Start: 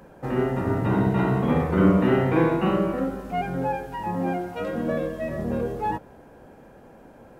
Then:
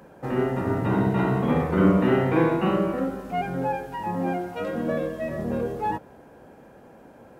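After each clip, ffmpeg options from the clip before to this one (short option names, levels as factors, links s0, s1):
-af "highpass=f=84:p=1"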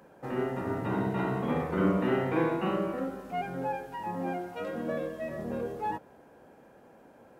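-af "lowshelf=f=170:g=-6.5,volume=0.531"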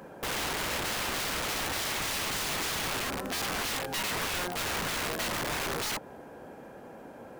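-filter_complex "[0:a]asplit=2[s0][s1];[s1]acompressor=threshold=0.0158:ratio=12,volume=1.06[s2];[s0][s2]amix=inputs=2:normalize=0,aeval=exprs='(mod(31.6*val(0)+1,2)-1)/31.6':c=same,volume=1.33"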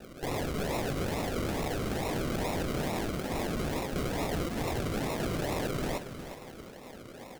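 -filter_complex "[0:a]acrusher=samples=40:mix=1:aa=0.000001:lfo=1:lforange=24:lforate=2.3,asplit=2[s0][s1];[s1]aecho=0:1:363|726|1089:0.299|0.0836|0.0234[s2];[s0][s2]amix=inputs=2:normalize=0"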